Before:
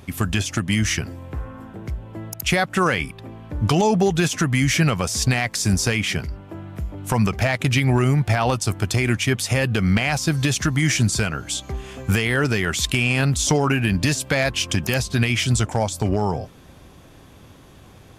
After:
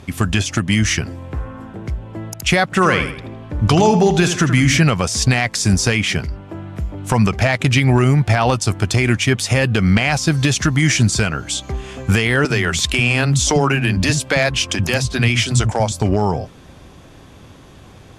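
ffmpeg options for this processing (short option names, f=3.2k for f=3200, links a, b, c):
-filter_complex "[0:a]asettb=1/sr,asplit=3[a][b][c];[a]atrim=end=2.644[d];[b]atrim=start=2.64:end=4.79,asetpts=PTS-STARTPTS,afade=t=in:d=0.004:c=qsin,afade=t=out:st=2.146:d=0.004:c=qsin,asplit=2[e][f];[f]adelay=80,lowpass=f=4.6k:p=1,volume=-8.5dB,asplit=2[g][h];[h]adelay=80,lowpass=f=4.6k:p=1,volume=0.41,asplit=2[i][j];[j]adelay=80,lowpass=f=4.6k:p=1,volume=0.41,asplit=2[k][l];[l]adelay=80,lowpass=f=4.6k:p=1,volume=0.41,asplit=2[m][n];[n]adelay=80,lowpass=f=4.6k:p=1,volume=0.41[o];[e][g][i][k][m][o]amix=inputs=6:normalize=0,atrim=end_sample=94815[p];[c]atrim=start=4.786[q];[d][p]acrossfade=d=0.004:c1=hsin:c2=qsin[r];[r][q]acrossfade=d=0.004:c1=qsin:c2=hsin,asettb=1/sr,asplit=3[s][t][u];[s]atrim=end=12.454[v];[t]atrim=start=12.45:end=15.92,asetpts=PTS-STARTPTS,afade=t=in:d=0.004:c=qsin,afade=t=out:st=3.466:d=0.004:c=qsin,acrossover=split=220[w][x];[w]adelay=50[y];[y][x]amix=inputs=2:normalize=0,atrim=end_sample=153027[z];[u]atrim=start=15.916[aa];[v][z]acrossfade=d=0.004:c1=hsin:c2=qsin[ab];[ab][aa]acrossfade=d=0.004:c1=qsin:c2=hsin,lowpass=9.4k,volume=4.5dB"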